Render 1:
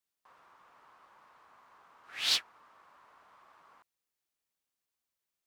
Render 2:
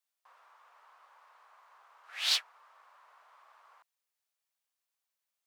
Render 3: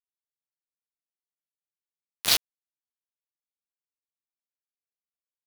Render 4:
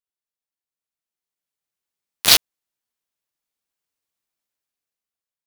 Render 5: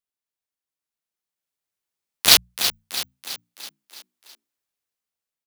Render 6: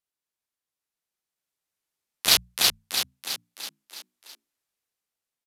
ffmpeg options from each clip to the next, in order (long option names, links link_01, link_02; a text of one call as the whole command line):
ffmpeg -i in.wav -af "highpass=frequency=550:width=0.5412,highpass=frequency=550:width=1.3066" out.wav
ffmpeg -i in.wav -af "acrusher=bits=3:mix=0:aa=0.000001,volume=6dB" out.wav
ffmpeg -i in.wav -af "dynaudnorm=framelen=380:gausssize=7:maxgain=13dB" out.wav
ffmpeg -i in.wav -filter_complex "[0:a]bandreject=frequency=60:width_type=h:width=6,bandreject=frequency=120:width_type=h:width=6,bandreject=frequency=180:width_type=h:width=6,asplit=7[link_01][link_02][link_03][link_04][link_05][link_06][link_07];[link_02]adelay=330,afreqshift=37,volume=-9.5dB[link_08];[link_03]adelay=660,afreqshift=74,volume=-14.9dB[link_09];[link_04]adelay=990,afreqshift=111,volume=-20.2dB[link_10];[link_05]adelay=1320,afreqshift=148,volume=-25.6dB[link_11];[link_06]adelay=1650,afreqshift=185,volume=-30.9dB[link_12];[link_07]adelay=1980,afreqshift=222,volume=-36.3dB[link_13];[link_01][link_08][link_09][link_10][link_11][link_12][link_13]amix=inputs=7:normalize=0" out.wav
ffmpeg -i in.wav -af "asoftclip=type=hard:threshold=-9dB,aresample=32000,aresample=44100,volume=1.5dB" out.wav